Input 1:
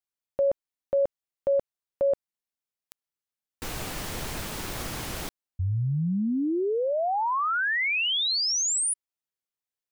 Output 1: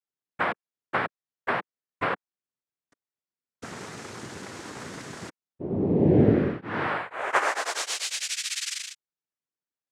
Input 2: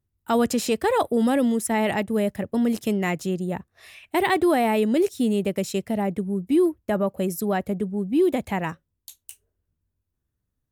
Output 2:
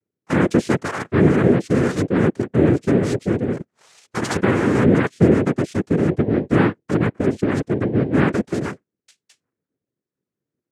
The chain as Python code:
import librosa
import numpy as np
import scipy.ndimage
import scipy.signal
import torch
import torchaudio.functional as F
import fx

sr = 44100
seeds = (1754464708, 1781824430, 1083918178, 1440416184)

y = fx.small_body(x, sr, hz=(200.0, 1100.0), ring_ms=20, db=12)
y = fx.env_flanger(y, sr, rest_ms=3.8, full_db=-10.5)
y = fx.noise_vocoder(y, sr, seeds[0], bands=3)
y = F.gain(torch.from_numpy(y), -3.0).numpy()